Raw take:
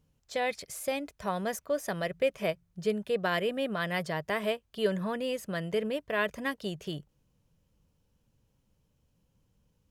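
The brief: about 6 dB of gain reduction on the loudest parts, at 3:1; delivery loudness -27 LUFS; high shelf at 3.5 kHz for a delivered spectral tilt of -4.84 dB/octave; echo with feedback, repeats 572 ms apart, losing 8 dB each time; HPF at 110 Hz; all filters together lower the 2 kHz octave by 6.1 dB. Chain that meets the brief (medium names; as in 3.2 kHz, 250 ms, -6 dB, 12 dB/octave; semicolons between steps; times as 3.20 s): high-pass 110 Hz; peaking EQ 2 kHz -5.5 dB; treble shelf 3.5 kHz -7.5 dB; compression 3:1, threshold -31 dBFS; feedback delay 572 ms, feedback 40%, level -8 dB; trim +9 dB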